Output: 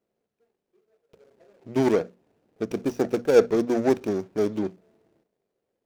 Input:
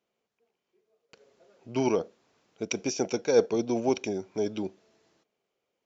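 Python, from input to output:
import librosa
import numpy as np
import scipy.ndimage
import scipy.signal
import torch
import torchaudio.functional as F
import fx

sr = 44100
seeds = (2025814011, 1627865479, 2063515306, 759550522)

y = scipy.ndimage.median_filter(x, 41, mode='constant')
y = fx.hum_notches(y, sr, base_hz=60, count=4)
y = y * librosa.db_to_amplitude(6.0)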